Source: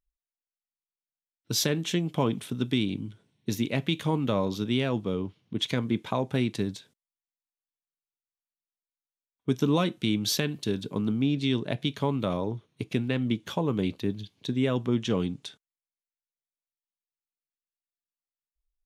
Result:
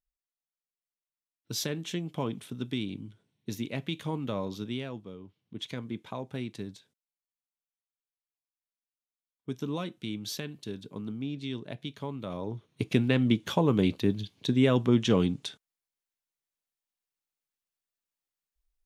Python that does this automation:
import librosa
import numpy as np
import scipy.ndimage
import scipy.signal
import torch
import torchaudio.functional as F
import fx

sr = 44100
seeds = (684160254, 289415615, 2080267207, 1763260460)

y = fx.gain(x, sr, db=fx.line((4.64, -6.5), (5.19, -16.0), (5.58, -9.5), (12.25, -9.5), (12.83, 3.0)))